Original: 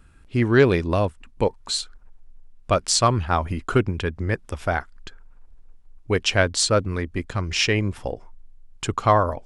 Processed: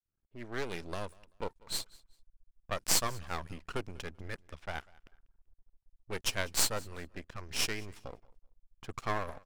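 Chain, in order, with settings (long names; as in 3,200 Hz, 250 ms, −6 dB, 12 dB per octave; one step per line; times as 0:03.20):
fade in at the beginning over 0.93 s
low-pass that shuts in the quiet parts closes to 880 Hz, open at −18.5 dBFS
first-order pre-emphasis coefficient 0.8
half-wave rectification
on a send: repeating echo 193 ms, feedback 25%, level −24 dB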